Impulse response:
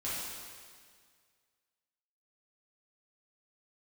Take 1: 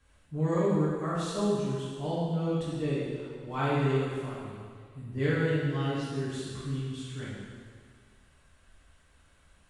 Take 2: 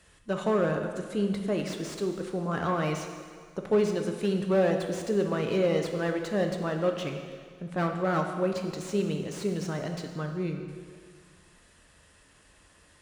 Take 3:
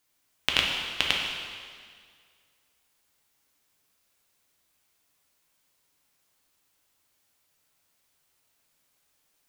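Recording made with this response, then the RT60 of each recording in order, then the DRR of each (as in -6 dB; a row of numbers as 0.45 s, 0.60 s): 1; 1.9 s, 1.9 s, 1.9 s; -10.0 dB, 3.5 dB, -1.5 dB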